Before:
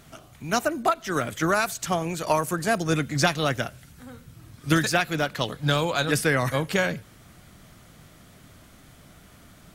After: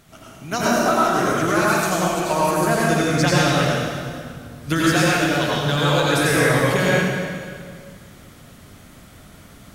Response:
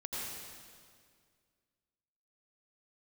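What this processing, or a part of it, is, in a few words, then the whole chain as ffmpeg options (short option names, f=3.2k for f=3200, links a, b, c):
stairwell: -filter_complex "[1:a]atrim=start_sample=2205[a];[0:a][a]afir=irnorm=-1:irlink=0,bandreject=f=60:t=h:w=6,bandreject=f=120:t=h:w=6,asettb=1/sr,asplit=3[b][c][d];[b]atrim=end=0.564[e];[c]atrim=start=0.56:end=1.32,asetpts=PTS-STARTPTS,afade=t=in:d=0.004:c=qsin,afade=t=out:st=0.756:d=0.004:c=qsin,asplit=2[f][g];[g]adelay=29,volume=-4.5dB[h];[f][h]amix=inputs=2:normalize=0,atrim=end_sample=33516[i];[d]atrim=start=1.316[j];[e][i]acrossfade=d=0.004:c1=hsin:c2=qsin[k];[k][j]acrossfade=d=0.004:c1=qsin:c2=hsin,volume=4dB"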